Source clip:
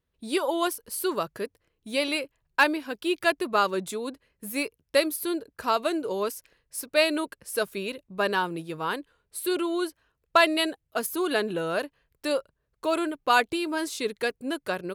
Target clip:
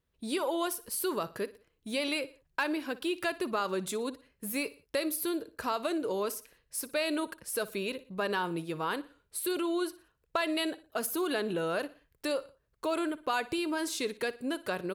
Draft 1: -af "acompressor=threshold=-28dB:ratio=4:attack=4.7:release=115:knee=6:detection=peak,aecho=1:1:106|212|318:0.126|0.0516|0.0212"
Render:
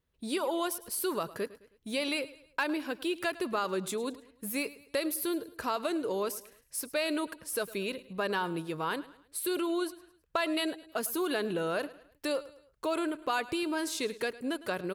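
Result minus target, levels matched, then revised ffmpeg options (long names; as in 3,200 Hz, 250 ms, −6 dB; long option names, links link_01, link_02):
echo 47 ms late
-af "acompressor=threshold=-28dB:ratio=4:attack=4.7:release=115:knee=6:detection=peak,aecho=1:1:59|118|177:0.126|0.0516|0.0212"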